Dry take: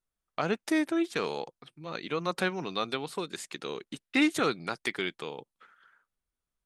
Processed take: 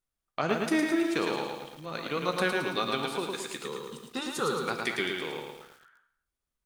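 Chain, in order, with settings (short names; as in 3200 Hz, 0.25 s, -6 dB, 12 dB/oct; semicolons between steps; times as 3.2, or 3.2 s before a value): 3.62–4.56 fixed phaser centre 440 Hz, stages 8; non-linear reverb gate 0.29 s falling, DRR 7.5 dB; lo-fi delay 0.11 s, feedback 55%, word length 9-bit, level -3.5 dB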